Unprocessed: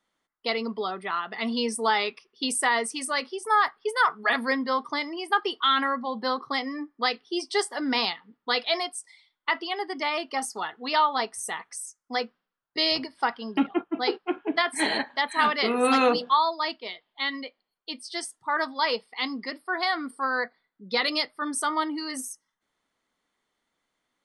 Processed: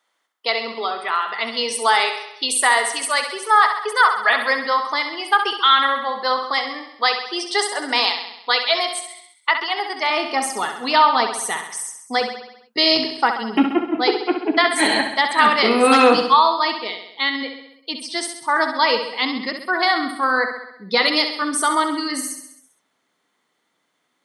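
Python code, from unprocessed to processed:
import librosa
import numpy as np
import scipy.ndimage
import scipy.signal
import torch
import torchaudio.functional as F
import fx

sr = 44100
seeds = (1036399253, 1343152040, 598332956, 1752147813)

y = fx.highpass(x, sr, hz=fx.steps((0.0, 540.0), (10.1, 63.0), (12.21, 140.0)), slope=12)
y = fx.echo_feedback(y, sr, ms=66, feedback_pct=58, wet_db=-8.0)
y = F.gain(torch.from_numpy(y), 7.5).numpy()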